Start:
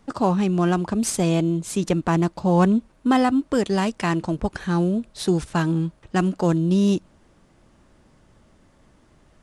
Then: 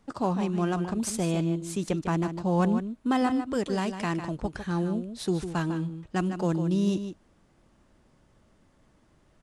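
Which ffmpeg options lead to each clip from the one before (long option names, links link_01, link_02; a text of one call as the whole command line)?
ffmpeg -i in.wav -filter_complex "[0:a]asplit=2[link_01][link_02];[link_02]adelay=151.6,volume=-9dB,highshelf=frequency=4000:gain=-3.41[link_03];[link_01][link_03]amix=inputs=2:normalize=0,volume=-7dB" out.wav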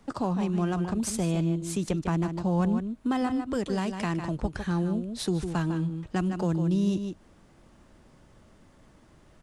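ffmpeg -i in.wav -filter_complex "[0:a]acrossover=split=140[link_01][link_02];[link_02]acompressor=threshold=-39dB:ratio=2[link_03];[link_01][link_03]amix=inputs=2:normalize=0,volume=6dB" out.wav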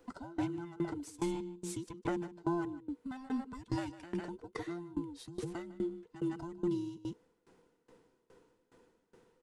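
ffmpeg -i in.wav -af "afftfilt=real='real(if(between(b,1,1008),(2*floor((b-1)/24)+1)*24-b,b),0)':imag='imag(if(between(b,1,1008),(2*floor((b-1)/24)+1)*24-b,b),0)*if(between(b,1,1008),-1,1)':win_size=2048:overlap=0.75,aeval=exprs='val(0)*pow(10,-22*if(lt(mod(2.4*n/s,1),2*abs(2.4)/1000),1-mod(2.4*n/s,1)/(2*abs(2.4)/1000),(mod(2.4*n/s,1)-2*abs(2.4)/1000)/(1-2*abs(2.4)/1000))/20)':channel_layout=same,volume=-4dB" out.wav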